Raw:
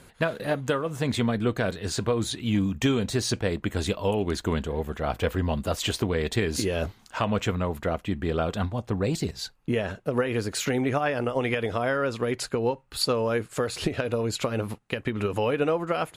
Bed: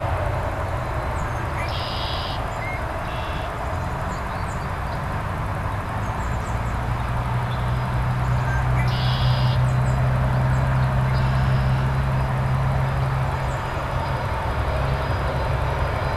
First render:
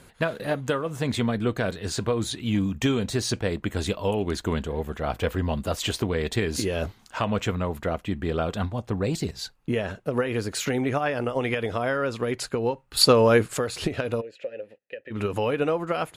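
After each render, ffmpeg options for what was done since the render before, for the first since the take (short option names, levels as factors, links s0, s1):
-filter_complex "[0:a]asplit=3[s0][s1][s2];[s0]afade=t=out:st=14.2:d=0.02[s3];[s1]asplit=3[s4][s5][s6];[s4]bandpass=f=530:t=q:w=8,volume=1[s7];[s5]bandpass=f=1840:t=q:w=8,volume=0.501[s8];[s6]bandpass=f=2480:t=q:w=8,volume=0.355[s9];[s7][s8][s9]amix=inputs=3:normalize=0,afade=t=in:st=14.2:d=0.02,afade=t=out:st=15.1:d=0.02[s10];[s2]afade=t=in:st=15.1:d=0.02[s11];[s3][s10][s11]amix=inputs=3:normalize=0,asplit=3[s12][s13][s14];[s12]atrim=end=12.972[s15];[s13]atrim=start=12.968:end=13.572,asetpts=PTS-STARTPTS,volume=2.51[s16];[s14]atrim=start=13.568[s17];[s15][s16]acrossfade=d=0.004:c1=hsin:c2=hsin[s18];[s18][s17]acrossfade=d=0.004:c1=hsin:c2=hsin"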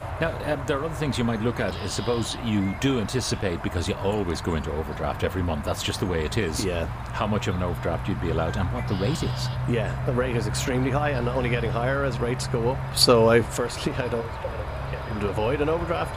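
-filter_complex "[1:a]volume=0.355[s0];[0:a][s0]amix=inputs=2:normalize=0"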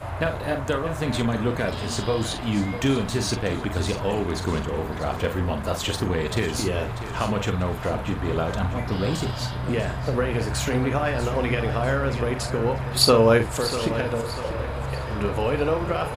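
-filter_complex "[0:a]asplit=2[s0][s1];[s1]adelay=44,volume=0.398[s2];[s0][s2]amix=inputs=2:normalize=0,asplit=2[s3][s4];[s4]aecho=0:1:643|1286|1929|2572:0.251|0.103|0.0422|0.0173[s5];[s3][s5]amix=inputs=2:normalize=0"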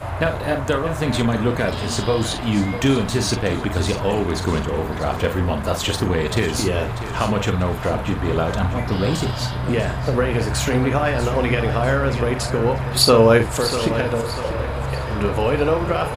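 -af "volume=1.68,alimiter=limit=0.708:level=0:latency=1"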